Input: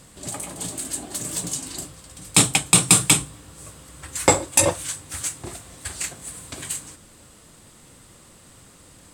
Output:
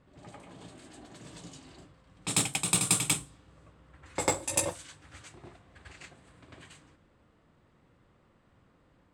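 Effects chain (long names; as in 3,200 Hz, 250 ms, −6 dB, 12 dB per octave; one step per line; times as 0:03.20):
backwards echo 97 ms −4.5 dB
harmonic generator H 3 −17 dB, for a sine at −1.5 dBFS
low-pass that shuts in the quiet parts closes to 1,900 Hz, open at −18 dBFS
level −9 dB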